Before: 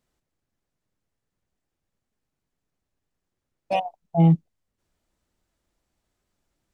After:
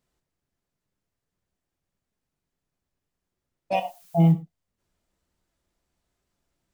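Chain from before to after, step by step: 3.73–4.31 added noise blue -55 dBFS; non-linear reverb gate 0.13 s falling, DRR 8 dB; gain -1.5 dB

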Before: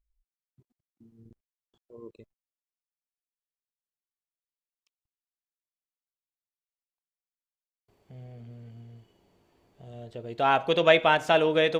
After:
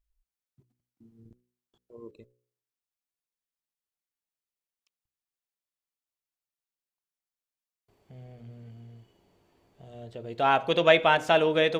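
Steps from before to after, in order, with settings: de-hum 61.19 Hz, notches 9

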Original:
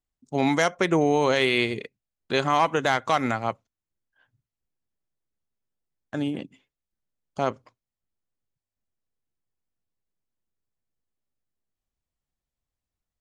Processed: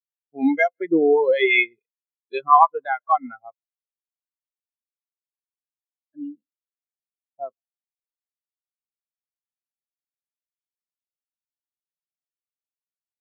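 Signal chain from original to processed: tilt shelf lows -6 dB, about 1300 Hz; feedback echo 0.152 s, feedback 44%, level -20 dB; spectral expander 4:1; gain +4.5 dB

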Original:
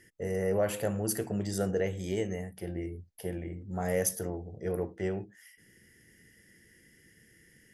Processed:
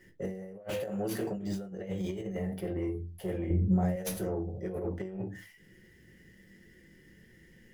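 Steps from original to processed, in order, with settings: median filter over 5 samples; 0.7–1.37 HPF 240 Hz 6 dB/oct; 2.35–2.76 bell 7100 Hz -6.5 dB 0.77 oct; reverb RT60 0.25 s, pre-delay 5 ms, DRR -2.5 dB; negative-ratio compressor -28 dBFS, ratio -0.5; soft clip -17 dBFS, distortion -24 dB; 3.5–3.96 low shelf 410 Hz +11.5 dB; sustainer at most 88 dB/s; gain -6 dB

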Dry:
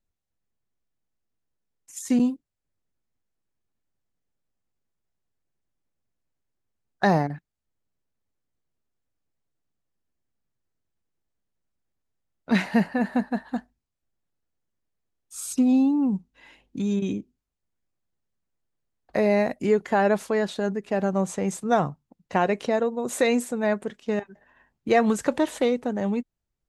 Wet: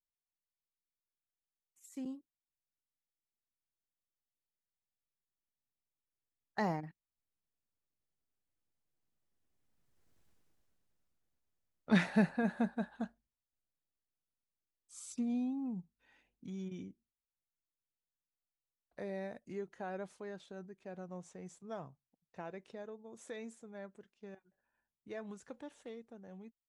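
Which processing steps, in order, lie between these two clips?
Doppler pass-by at 10.22, 22 m/s, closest 5 m; gain +10.5 dB

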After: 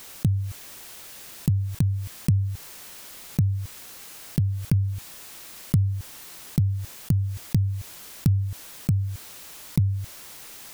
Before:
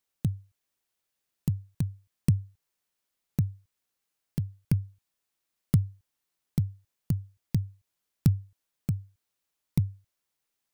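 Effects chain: fast leveller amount 70%

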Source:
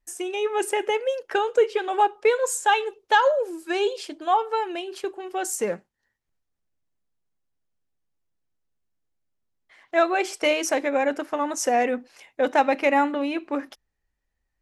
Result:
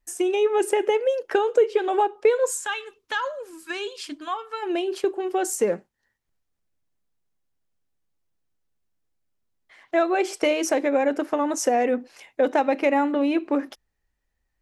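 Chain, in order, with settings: compressor 2:1, threshold -28 dBFS, peak gain reduction 8.5 dB; spectral gain 2.51–4.63, 320–950 Hz -11 dB; dynamic EQ 360 Hz, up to +7 dB, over -41 dBFS, Q 0.75; gain +2 dB

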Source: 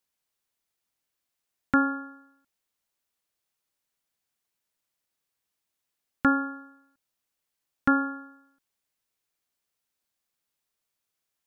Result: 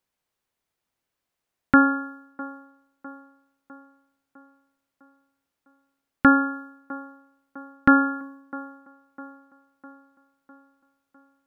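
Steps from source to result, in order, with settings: on a send: band-limited delay 0.654 s, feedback 54%, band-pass 620 Hz, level -14.5 dB; on the sum: mismatched tape noise reduction decoder only; gain +6.5 dB

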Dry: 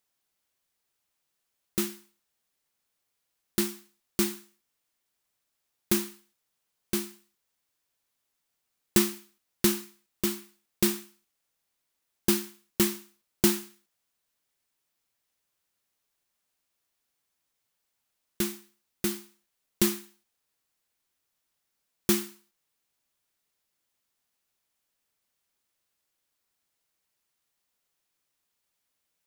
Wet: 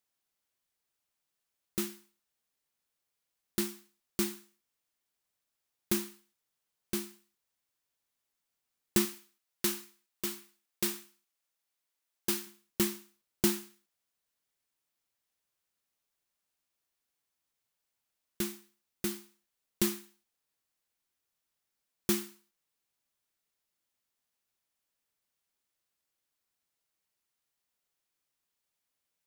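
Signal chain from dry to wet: 9.05–12.47 low shelf 320 Hz -10 dB; gain -5 dB

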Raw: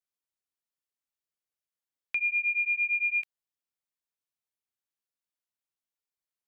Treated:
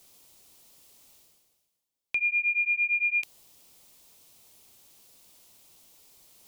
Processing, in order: reverse; upward compressor, threshold -40 dBFS; reverse; bell 1600 Hz -11.5 dB 1 oct; gain +6.5 dB

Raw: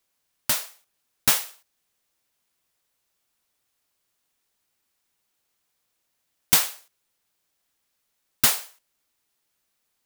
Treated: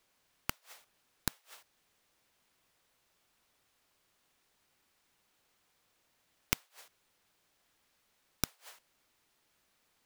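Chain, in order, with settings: high shelf 5500 Hz -9.5 dB; flipped gate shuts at -24 dBFS, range -41 dB; gain +6 dB

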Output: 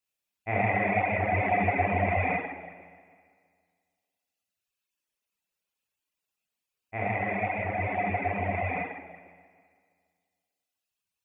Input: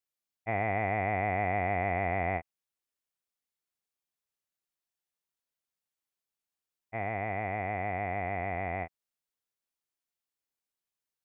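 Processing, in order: bell 2600 Hz +9 dB 0.22 oct; reverb RT60 2.0 s, pre-delay 11 ms, DRR -6 dB; reverb removal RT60 1.5 s

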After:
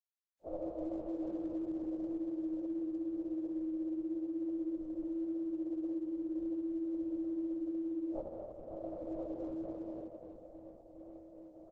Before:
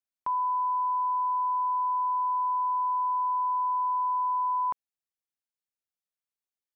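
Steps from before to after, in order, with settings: plate-style reverb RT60 4.6 s, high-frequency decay 0.8×, DRR 3.5 dB; reverse; compressor 8:1, threshold -36 dBFS, peak gain reduction 10.5 dB; reverse; doubler 42 ms -6 dB; LPC vocoder at 8 kHz whisper; formant-preserving pitch shift -10 st; notches 50/100/150/200 Hz; on a send: echo 0.842 s -18 dB; on the sum: speed mistake 78 rpm record played at 45 rpm; Bessel low-pass 740 Hz, order 4; gain -3 dB; Opus 10 kbps 48000 Hz

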